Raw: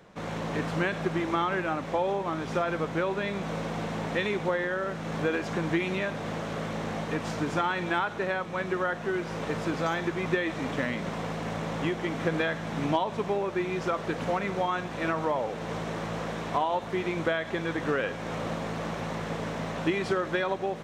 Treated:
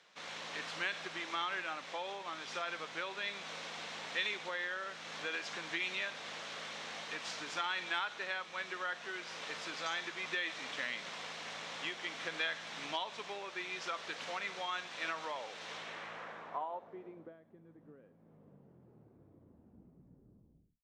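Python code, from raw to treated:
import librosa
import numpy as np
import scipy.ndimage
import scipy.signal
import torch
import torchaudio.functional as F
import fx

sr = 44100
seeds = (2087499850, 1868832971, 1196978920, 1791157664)

y = fx.tape_stop_end(x, sr, length_s=2.61)
y = np.diff(y, prepend=0.0)
y = fx.filter_sweep_lowpass(y, sr, from_hz=4300.0, to_hz=210.0, start_s=15.65, end_s=17.54, q=1.0)
y = F.gain(torch.from_numpy(y), 6.0).numpy()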